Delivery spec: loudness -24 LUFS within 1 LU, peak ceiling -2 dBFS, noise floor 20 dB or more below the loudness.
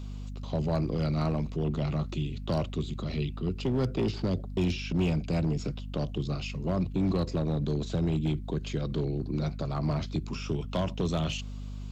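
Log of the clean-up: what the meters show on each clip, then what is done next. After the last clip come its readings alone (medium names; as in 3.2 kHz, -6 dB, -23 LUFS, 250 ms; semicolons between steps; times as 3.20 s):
clipped samples 2.0%; clipping level -22.0 dBFS; hum 50 Hz; highest harmonic 250 Hz; hum level -36 dBFS; loudness -31.0 LUFS; peak level -22.0 dBFS; loudness target -24.0 LUFS
-> clip repair -22 dBFS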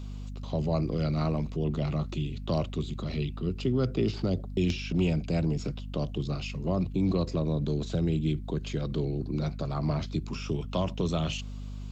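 clipped samples 0.0%; hum 50 Hz; highest harmonic 250 Hz; hum level -36 dBFS
-> de-hum 50 Hz, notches 5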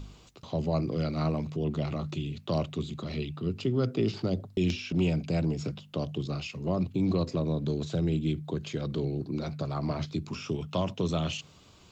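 hum not found; loudness -31.5 LUFS; peak level -14.0 dBFS; loudness target -24.0 LUFS
-> trim +7.5 dB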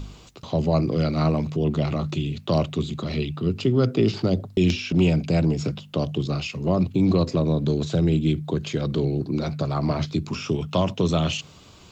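loudness -24.0 LUFS; peak level -6.5 dBFS; noise floor -48 dBFS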